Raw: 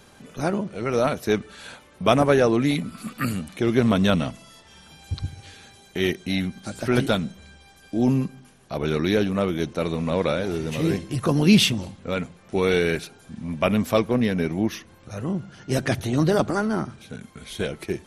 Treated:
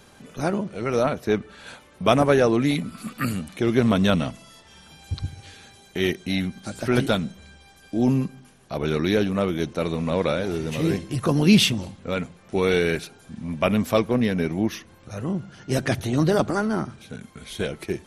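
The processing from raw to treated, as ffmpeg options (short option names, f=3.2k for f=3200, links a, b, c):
-filter_complex "[0:a]asettb=1/sr,asplit=3[a][b][c];[a]atrim=end=1.034[d];[b]atrim=start=1.03:end=1.67,asetpts=PTS-STARTPTS,afade=t=in:d=0.004:c=qsin,afade=t=out:st=0.636:d=0.004:c=qsin,highshelf=f=3.9k:g=-9.5[e];[c]atrim=start=1.666[f];[d][e]acrossfade=d=0.004:c1=hsin:c2=qsin[g];[g][f]acrossfade=d=0.004:c1=qsin:c2=hsin"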